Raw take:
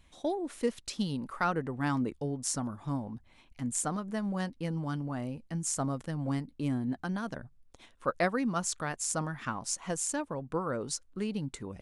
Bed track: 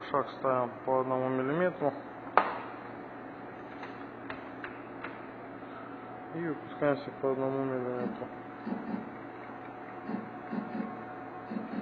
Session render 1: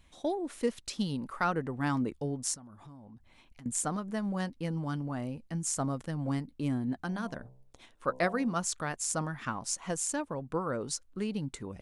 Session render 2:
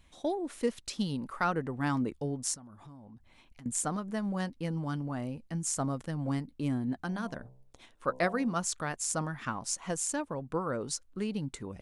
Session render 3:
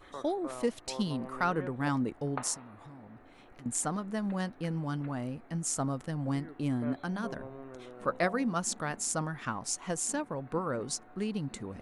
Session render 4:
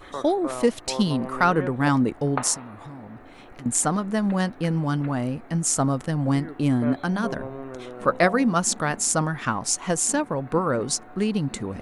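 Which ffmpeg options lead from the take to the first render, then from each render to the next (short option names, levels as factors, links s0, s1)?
-filter_complex "[0:a]asettb=1/sr,asplit=3[s0][s1][s2];[s0]atrim=end=2.544[s3];[s1]atrim=start=2.54:end=3.66,asetpts=PTS-STARTPTS,afade=t=in:d=0.004:c=qsin,afade=t=out:st=1.116:d=0.004:c=qsin,acompressor=threshold=0.00355:ratio=5:attack=3.2:release=140:knee=1:detection=peak[s4];[s2]atrim=start=3.656[s5];[s3][s4]acrossfade=d=0.004:c1=hsin:c2=qsin[s6];[s6][s5]acrossfade=d=0.004:c1=qsin:c2=hsin,asettb=1/sr,asplit=3[s7][s8][s9];[s7]atrim=end=7.034[s10];[s8]atrim=start=7.03:end=8.53,asetpts=PTS-STARTPTS,afade=t=in:d=0.004:c=qsin,afade=t=out:st=1.496:d=0.004:c=qsin,bandreject=f=64.17:t=h:w=4,bandreject=f=128.34:t=h:w=4,bandreject=f=192.51:t=h:w=4,bandreject=f=256.68:t=h:w=4,bandreject=f=320.85:t=h:w=4,bandreject=f=385.02:t=h:w=4,bandreject=f=449.19:t=h:w=4,bandreject=f=513.36:t=h:w=4,bandreject=f=577.53:t=h:w=4,bandreject=f=641.7:t=h:w=4,bandreject=f=705.87:t=h:w=4,bandreject=f=770.04:t=h:w=4,bandreject=f=834.21:t=h:w=4,bandreject=f=898.38:t=h:w=4,bandreject=f=962.55:t=h:w=4,bandreject=f=1026.72:t=h:w=4[s11];[s9]atrim=start=8.526[s12];[s10][s11]acrossfade=d=0.004:c1=hsin:c2=qsin[s13];[s13][s12]acrossfade=d=0.004:c1=qsin:c2=hsin"
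-af anull
-filter_complex "[1:a]volume=0.2[s0];[0:a][s0]amix=inputs=2:normalize=0"
-af "volume=3.16"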